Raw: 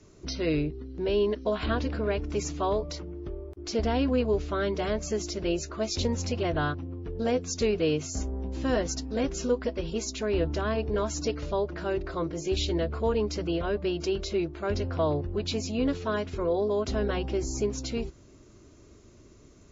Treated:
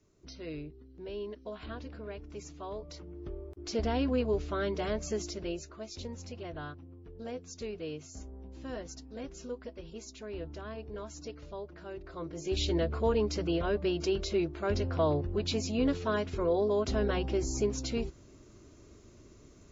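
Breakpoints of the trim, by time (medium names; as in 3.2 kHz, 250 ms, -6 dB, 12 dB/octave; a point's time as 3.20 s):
2.68 s -14 dB
3.30 s -4 dB
5.21 s -4 dB
5.85 s -13.5 dB
11.98 s -13.5 dB
12.68 s -1.5 dB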